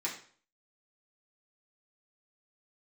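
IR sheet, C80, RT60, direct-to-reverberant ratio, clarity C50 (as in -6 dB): 11.5 dB, 0.50 s, -5.5 dB, 7.5 dB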